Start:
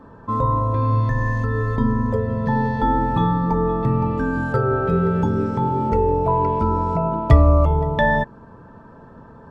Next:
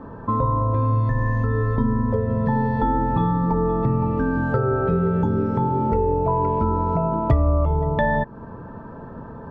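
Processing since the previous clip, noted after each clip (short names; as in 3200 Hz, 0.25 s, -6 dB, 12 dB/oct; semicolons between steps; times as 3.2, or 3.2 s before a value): LPF 1500 Hz 6 dB/oct; compressor 2.5:1, threshold -28 dBFS, peak gain reduction 14 dB; gain +7 dB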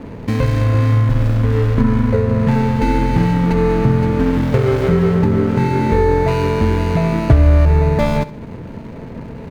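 median filter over 41 samples; feedback echo 66 ms, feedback 42%, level -16 dB; gain +7.5 dB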